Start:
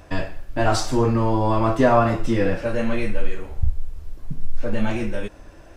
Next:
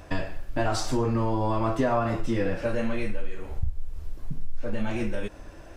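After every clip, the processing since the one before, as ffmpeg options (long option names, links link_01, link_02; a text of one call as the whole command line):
ffmpeg -i in.wav -af "acompressor=threshold=-23dB:ratio=3" out.wav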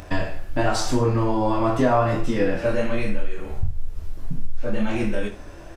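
ffmpeg -i in.wav -af "flanger=delay=9.9:depth=6.3:regen=-59:speed=0.97:shape=triangular,acompressor=mode=upward:threshold=-48dB:ratio=2.5,aecho=1:1:24|77:0.501|0.224,volume=8dB" out.wav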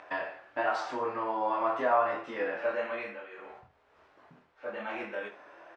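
ffmpeg -i in.wav -af "highpass=730,lowpass=2000,volume=-2dB" out.wav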